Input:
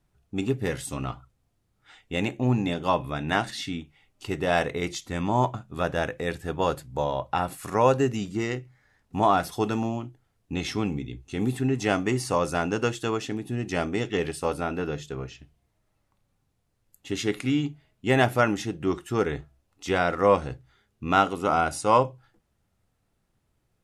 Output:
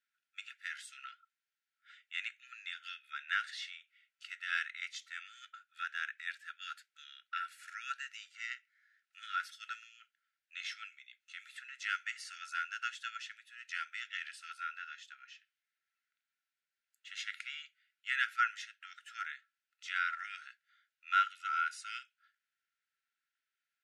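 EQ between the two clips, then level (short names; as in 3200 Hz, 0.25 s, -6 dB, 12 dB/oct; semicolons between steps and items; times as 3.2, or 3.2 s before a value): brick-wall FIR high-pass 1300 Hz; air absorption 53 m; high shelf 3400 Hz -8.5 dB; -2.5 dB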